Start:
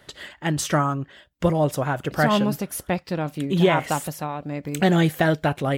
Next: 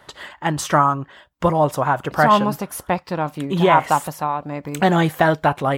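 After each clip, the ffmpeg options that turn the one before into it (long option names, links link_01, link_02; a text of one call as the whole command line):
ffmpeg -i in.wav -af "equalizer=frequency=990:width=1.4:gain=11.5" out.wav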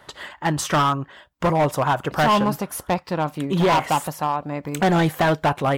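ffmpeg -i in.wav -af "asoftclip=type=hard:threshold=-14dB" out.wav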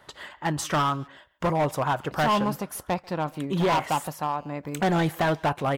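ffmpeg -i in.wav -filter_complex "[0:a]asplit=2[link_01][link_02];[link_02]adelay=140,highpass=300,lowpass=3400,asoftclip=type=hard:threshold=-23dB,volume=-19dB[link_03];[link_01][link_03]amix=inputs=2:normalize=0,volume=-5dB" out.wav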